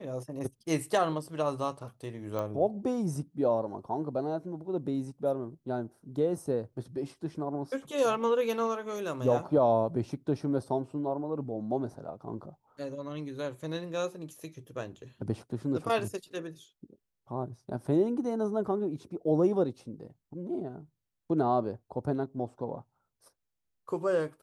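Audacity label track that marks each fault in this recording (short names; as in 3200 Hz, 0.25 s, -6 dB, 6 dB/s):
2.390000	2.390000	pop -22 dBFS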